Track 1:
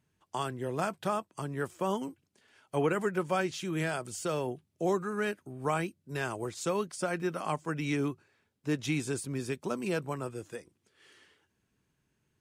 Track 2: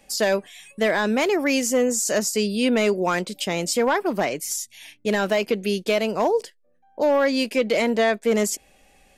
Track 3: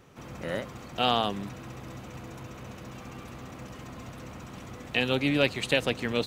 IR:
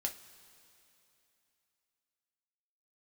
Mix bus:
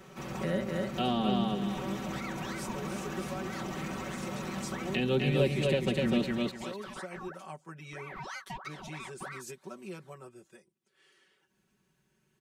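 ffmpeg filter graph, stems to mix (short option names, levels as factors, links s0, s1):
-filter_complex "[0:a]acompressor=mode=upward:threshold=0.00447:ratio=2.5,volume=0.2,asplit=2[s0][s1];[1:a]acompressor=threshold=0.0251:ratio=3,aeval=exprs='val(0)*sin(2*PI*1100*n/s+1100*0.65/3.1*sin(2*PI*3.1*n/s))':c=same,adelay=950,volume=0.398[s2];[2:a]volume=1.26,asplit=2[s3][s4];[s4]volume=0.708[s5];[s1]apad=whole_len=446355[s6];[s2][s6]sidechaincompress=threshold=0.00398:ratio=8:attack=16:release=283[s7];[s5]aecho=0:1:250|500|750:1|0.21|0.0441[s8];[s0][s7][s3][s8]amix=inputs=4:normalize=0,lowshelf=f=61:g=-8,aecho=1:1:5.3:0.94,acrossover=split=390[s9][s10];[s10]acompressor=threshold=0.0126:ratio=3[s11];[s9][s11]amix=inputs=2:normalize=0"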